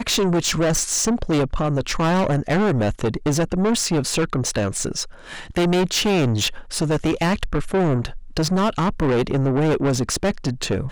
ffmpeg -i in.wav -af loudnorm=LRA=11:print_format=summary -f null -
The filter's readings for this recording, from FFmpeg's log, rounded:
Input Integrated:    -21.1 LUFS
Input True Peak:     -14.1 dBTP
Input LRA:             1.6 LU
Input Threshold:     -31.2 LUFS